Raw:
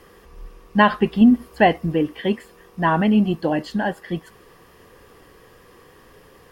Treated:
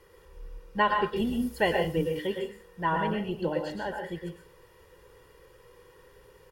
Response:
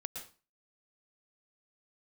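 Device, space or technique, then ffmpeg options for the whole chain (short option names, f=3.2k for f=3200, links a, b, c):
microphone above a desk: -filter_complex "[0:a]asettb=1/sr,asplit=3[a][b][c];[a]atrim=end=1.164[d];[b]atrim=start=1.16:end=2.27,asetpts=PTS-STARTPTS,afade=t=in:d=0.004:c=qsin,afade=t=out:st=1.106:d=0.004:c=qsin,bass=f=250:g=2,treble=f=4k:g=13[e];[c]atrim=start=2.266[f];[d][e]acrossfade=d=0.004:c1=hsin:c2=qsin[g];[g][f]acrossfade=d=0.004:c1=qsin:c2=hsin,aecho=1:1:2.1:0.65[h];[1:a]atrim=start_sample=2205[i];[h][i]afir=irnorm=-1:irlink=0,volume=-7.5dB"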